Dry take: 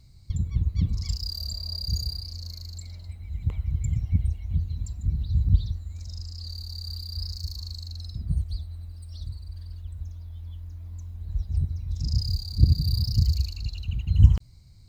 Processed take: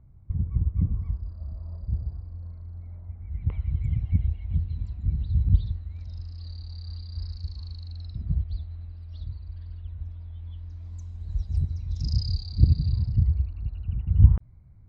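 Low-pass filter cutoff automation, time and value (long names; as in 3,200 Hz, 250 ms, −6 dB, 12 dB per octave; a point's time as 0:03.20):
low-pass filter 24 dB per octave
0:03.14 1,400 Hz
0:03.63 3,300 Hz
0:10.45 3,300 Hz
0:10.98 7,900 Hz
0:11.56 7,900 Hz
0:12.85 3,300 Hz
0:13.34 1,700 Hz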